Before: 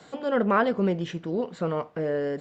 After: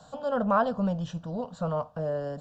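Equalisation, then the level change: bass shelf 96 Hz +11.5 dB; peaking EQ 620 Hz +4.5 dB 0.26 oct; static phaser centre 880 Hz, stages 4; 0.0 dB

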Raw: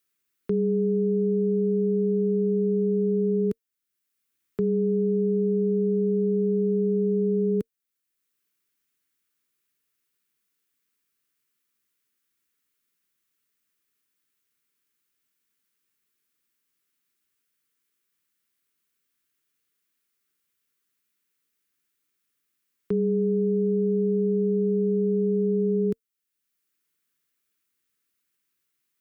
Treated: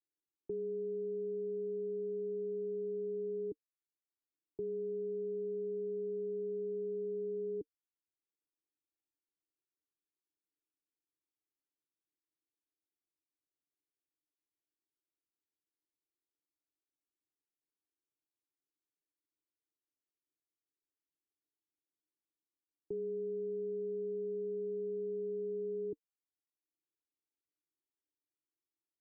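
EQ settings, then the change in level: cascade formant filter u; static phaser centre 530 Hz, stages 4; +1.0 dB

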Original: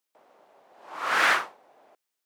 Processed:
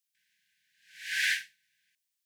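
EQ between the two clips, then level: brick-wall FIR band-stop 240–1500 Hz; amplifier tone stack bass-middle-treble 10-0-10; 0.0 dB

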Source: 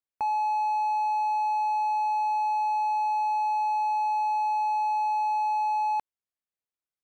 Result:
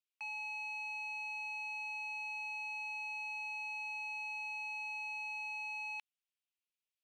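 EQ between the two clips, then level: band-pass filter 2.7 kHz, Q 3.4; tilt EQ +6 dB/octave; -3.0 dB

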